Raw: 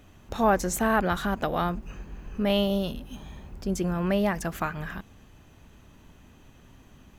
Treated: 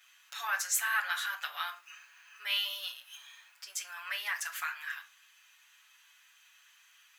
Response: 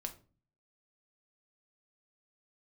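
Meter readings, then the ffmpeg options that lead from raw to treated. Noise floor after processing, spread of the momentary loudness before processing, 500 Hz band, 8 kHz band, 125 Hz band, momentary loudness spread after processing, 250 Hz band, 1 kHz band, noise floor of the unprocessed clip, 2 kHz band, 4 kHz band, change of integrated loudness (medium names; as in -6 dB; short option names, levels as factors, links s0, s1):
-63 dBFS, 18 LU, -30.5 dB, +2.5 dB, under -40 dB, 20 LU, under -40 dB, -10.5 dB, -54 dBFS, +0.5 dB, +2.0 dB, -7.0 dB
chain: -filter_complex "[0:a]highpass=f=1500:w=0.5412,highpass=f=1500:w=1.3066,asplit=2[s0][s1];[1:a]atrim=start_sample=2205,adelay=7[s2];[s1][s2]afir=irnorm=-1:irlink=0,volume=2[s3];[s0][s3]amix=inputs=2:normalize=0,volume=0.708"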